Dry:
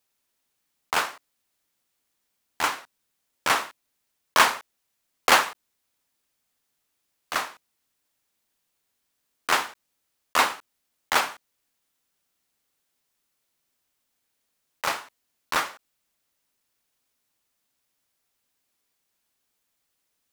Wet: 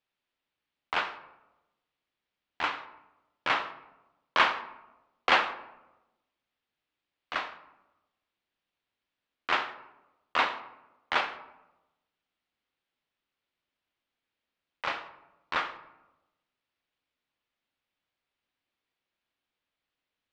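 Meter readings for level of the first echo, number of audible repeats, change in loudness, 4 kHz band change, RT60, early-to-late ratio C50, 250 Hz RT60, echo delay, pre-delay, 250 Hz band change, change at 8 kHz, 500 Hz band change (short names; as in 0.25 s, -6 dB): none, none, -5.5 dB, -5.5 dB, 1.0 s, 13.0 dB, 1.2 s, none, 3 ms, -5.0 dB, -22.5 dB, -5.0 dB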